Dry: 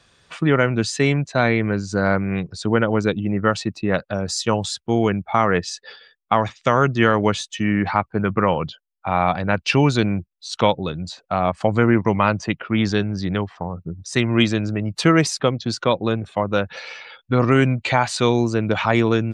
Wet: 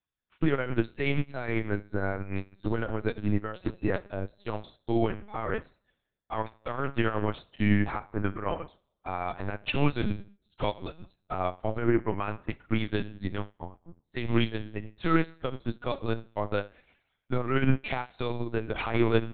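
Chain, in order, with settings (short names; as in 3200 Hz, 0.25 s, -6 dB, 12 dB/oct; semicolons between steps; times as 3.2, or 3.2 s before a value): reverb removal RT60 0.52 s; de-hum 273.9 Hz, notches 29; limiter -11.5 dBFS, peak gain reduction 8.5 dB; on a send: darkening echo 0.203 s, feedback 46%, low-pass 2700 Hz, level -19 dB; on the sum: Schroeder reverb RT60 0.82 s, combs from 31 ms, DRR 7 dB; LPC vocoder at 8 kHz pitch kept; upward expander 2.5:1, over -40 dBFS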